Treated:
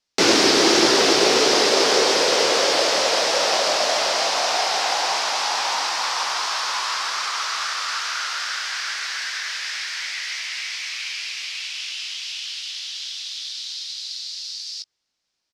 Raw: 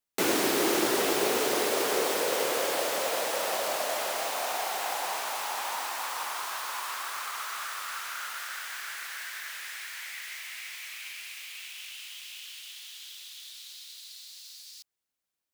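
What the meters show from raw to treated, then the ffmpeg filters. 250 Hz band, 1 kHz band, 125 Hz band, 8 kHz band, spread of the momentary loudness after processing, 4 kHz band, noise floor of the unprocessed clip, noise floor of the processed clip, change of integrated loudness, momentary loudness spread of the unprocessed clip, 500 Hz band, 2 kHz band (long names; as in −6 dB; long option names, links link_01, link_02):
+9.0 dB, +9.0 dB, can't be measured, +9.5 dB, 14 LU, +15.0 dB, below −85 dBFS, −78 dBFS, +10.0 dB, 17 LU, +9.0 dB, +10.0 dB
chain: -filter_complex "[0:a]lowpass=frequency=5200:width_type=q:width=2.9,asplit=2[link_01][link_02];[link_02]adelay=18,volume=-11dB[link_03];[link_01][link_03]amix=inputs=2:normalize=0,volume=8.5dB"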